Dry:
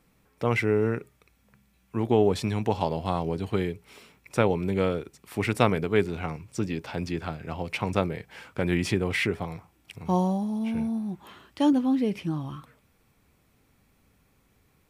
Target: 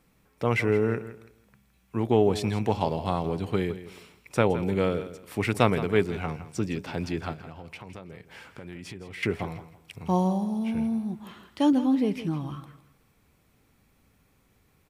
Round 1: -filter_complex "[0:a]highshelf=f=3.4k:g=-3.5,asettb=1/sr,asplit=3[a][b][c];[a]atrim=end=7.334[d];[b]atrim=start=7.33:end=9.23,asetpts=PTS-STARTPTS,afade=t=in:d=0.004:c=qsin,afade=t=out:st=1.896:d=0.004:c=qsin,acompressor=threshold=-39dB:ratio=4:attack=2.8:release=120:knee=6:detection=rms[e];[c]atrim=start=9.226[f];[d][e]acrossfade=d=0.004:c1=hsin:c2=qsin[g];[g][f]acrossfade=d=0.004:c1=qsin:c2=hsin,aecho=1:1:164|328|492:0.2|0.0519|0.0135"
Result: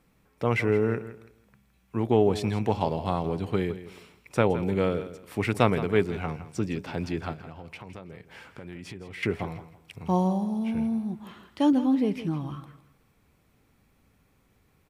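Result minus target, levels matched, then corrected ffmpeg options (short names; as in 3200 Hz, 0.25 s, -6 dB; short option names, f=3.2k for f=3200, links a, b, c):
8000 Hz band -3.0 dB
-filter_complex "[0:a]asettb=1/sr,asplit=3[a][b][c];[a]atrim=end=7.334[d];[b]atrim=start=7.33:end=9.23,asetpts=PTS-STARTPTS,afade=t=in:d=0.004:c=qsin,afade=t=out:st=1.896:d=0.004:c=qsin,acompressor=threshold=-39dB:ratio=4:attack=2.8:release=120:knee=6:detection=rms[e];[c]atrim=start=9.226[f];[d][e]acrossfade=d=0.004:c1=hsin:c2=qsin[g];[g][f]acrossfade=d=0.004:c1=qsin:c2=hsin,aecho=1:1:164|328|492:0.2|0.0519|0.0135"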